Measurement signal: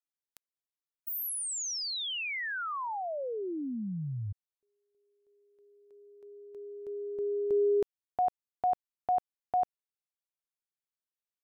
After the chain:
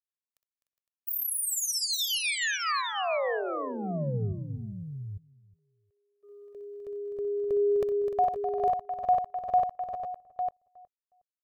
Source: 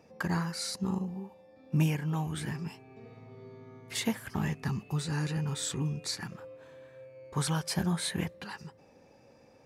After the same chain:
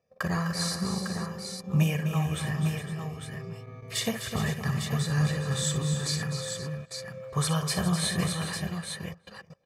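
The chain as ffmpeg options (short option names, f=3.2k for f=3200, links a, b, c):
-filter_complex "[0:a]asplit=2[a][b];[b]aecho=0:1:61|254|300|411|510|852:0.282|0.355|0.224|0.266|0.211|0.447[c];[a][c]amix=inputs=2:normalize=0,agate=range=-21dB:threshold=-53dB:ratio=16:release=29:detection=peak,aecho=1:1:1.7:0.67,asplit=2[d][e];[e]adelay=364,lowpass=f=1.3k:p=1,volume=-21dB,asplit=2[f][g];[g]adelay=364,lowpass=f=1.3k:p=1,volume=0.2[h];[f][h]amix=inputs=2:normalize=0[i];[d][i]amix=inputs=2:normalize=0,volume=2dB"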